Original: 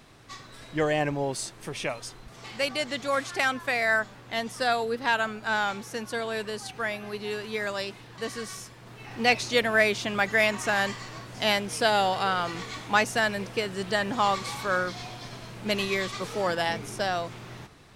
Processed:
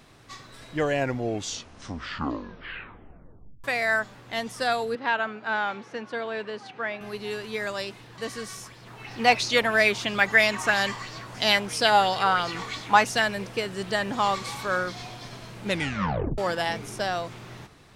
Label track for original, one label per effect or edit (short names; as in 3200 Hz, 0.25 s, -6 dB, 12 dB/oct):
0.770000	0.770000	tape stop 2.87 s
4.950000	7.010000	BPF 190–3000 Hz
8.630000	13.220000	LFO bell 3 Hz 860–5200 Hz +9 dB
15.650000	15.650000	tape stop 0.73 s